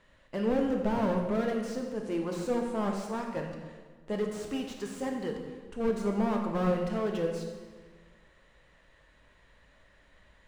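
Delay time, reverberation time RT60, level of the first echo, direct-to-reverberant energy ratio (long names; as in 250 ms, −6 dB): no echo audible, 1.5 s, no echo audible, 2.0 dB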